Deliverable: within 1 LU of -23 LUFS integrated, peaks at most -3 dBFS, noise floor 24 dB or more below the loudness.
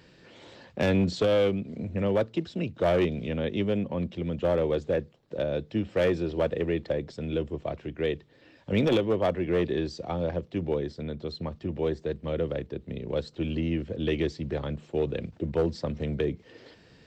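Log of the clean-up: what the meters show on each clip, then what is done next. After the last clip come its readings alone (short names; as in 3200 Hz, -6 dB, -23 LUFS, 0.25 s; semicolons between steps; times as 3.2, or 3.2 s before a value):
clipped 0.9%; flat tops at -18.0 dBFS; loudness -29.0 LUFS; peak -18.0 dBFS; loudness target -23.0 LUFS
-> clip repair -18 dBFS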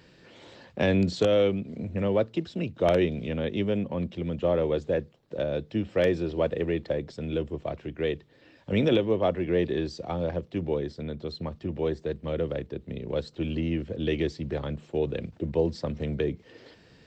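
clipped 0.0%; loudness -28.5 LUFS; peak -9.0 dBFS; loudness target -23.0 LUFS
-> gain +5.5 dB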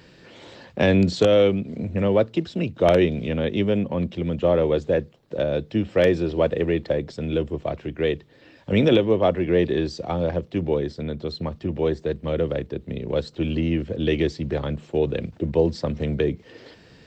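loudness -23.0 LUFS; peak -3.5 dBFS; noise floor -52 dBFS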